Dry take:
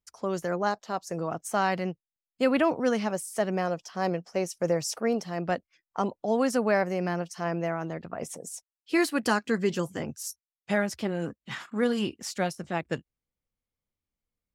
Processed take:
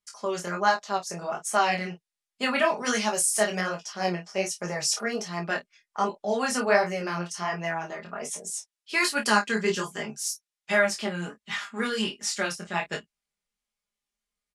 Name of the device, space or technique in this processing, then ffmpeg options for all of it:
double-tracked vocal: -filter_complex "[0:a]aecho=1:1:4.9:0.75,asplit=2[s0][s1];[s1]adelay=28,volume=0.398[s2];[s0][s2]amix=inputs=2:normalize=0,flanger=delay=17.5:depth=6.2:speed=1.3,lowpass=f=11000:w=0.5412,lowpass=f=11000:w=1.3066,tiltshelf=f=630:g=-7,asettb=1/sr,asplit=3[s3][s4][s5];[s3]atrim=end=2.774[s6];[s4]atrim=start=2.77:end=3.61,asetpts=PTS-STARTPTS,afade=t=in:d=0.004:c=qsin,afade=t=out:st=0.836:d=0.004:c=qsin,highshelf=f=4300:g=10[s7];[s5]atrim=start=3.606[s8];[s6][s7]acrossfade=d=0.004:c1=hsin:c2=qsin[s9];[s9][s8]acrossfade=d=0.004:c1=qsin:c2=hsin,volume=1.12"

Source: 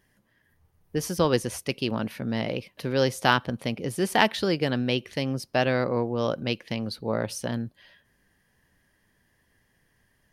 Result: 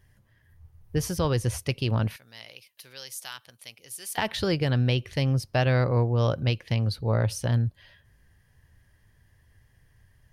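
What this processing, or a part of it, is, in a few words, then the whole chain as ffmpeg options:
car stereo with a boomy subwoofer: -filter_complex "[0:a]lowshelf=f=150:t=q:w=1.5:g=11.5,alimiter=limit=0.224:level=0:latency=1:release=115,asettb=1/sr,asplit=3[s0][s1][s2];[s0]atrim=end=2.164[s3];[s1]atrim=start=2.16:end=4.18,asetpts=PTS-STARTPTS,afade=t=in:d=0.004:c=qsin,afade=t=out:st=2.016:d=0.004:c=qsin,aderivative[s4];[s2]atrim=start=4.176[s5];[s3][s4]acrossfade=d=0.004:c1=hsin:c2=qsin[s6];[s6][s5]acrossfade=d=0.004:c1=qsin:c2=hsin"

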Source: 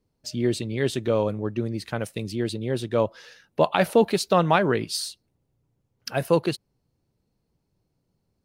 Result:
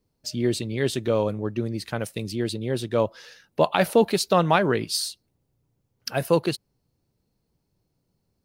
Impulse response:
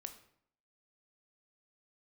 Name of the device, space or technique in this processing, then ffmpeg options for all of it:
presence and air boost: -af "equalizer=f=4800:t=o:w=0.77:g=2,highshelf=f=11000:g=7"

